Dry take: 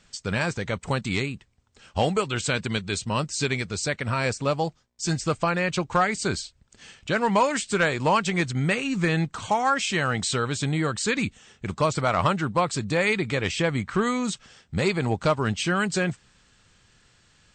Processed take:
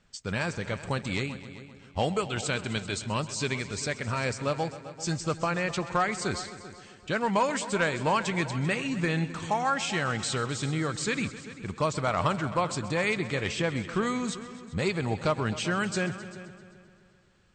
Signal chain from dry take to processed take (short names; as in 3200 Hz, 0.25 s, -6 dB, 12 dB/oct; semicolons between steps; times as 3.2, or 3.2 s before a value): multi-head echo 0.13 s, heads all three, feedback 44%, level -17.5 dB; mismatched tape noise reduction decoder only; gain -4.5 dB